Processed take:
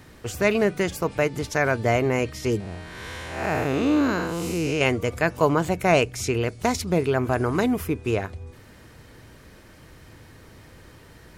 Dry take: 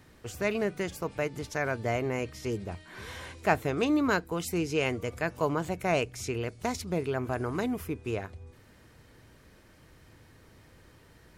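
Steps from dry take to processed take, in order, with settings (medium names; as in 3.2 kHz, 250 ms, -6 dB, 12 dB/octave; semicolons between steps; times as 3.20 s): 2.60–4.81 s: spectral blur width 224 ms; trim +8.5 dB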